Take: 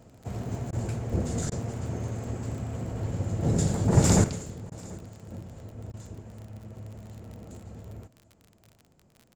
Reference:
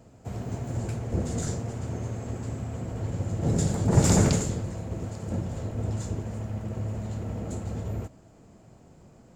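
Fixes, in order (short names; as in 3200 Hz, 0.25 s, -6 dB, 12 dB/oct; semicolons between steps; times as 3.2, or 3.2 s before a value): de-click; interpolate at 0.71/1.5/4.7/5.92, 16 ms; inverse comb 0.737 s -22.5 dB; gain 0 dB, from 4.24 s +10.5 dB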